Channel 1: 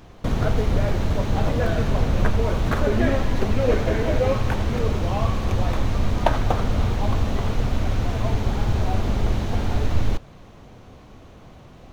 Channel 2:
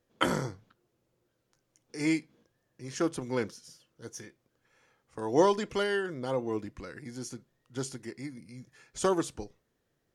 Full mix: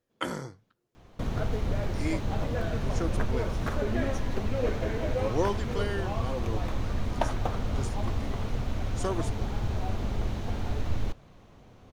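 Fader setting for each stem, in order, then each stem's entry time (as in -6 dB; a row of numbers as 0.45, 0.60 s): -8.5, -5.0 dB; 0.95, 0.00 s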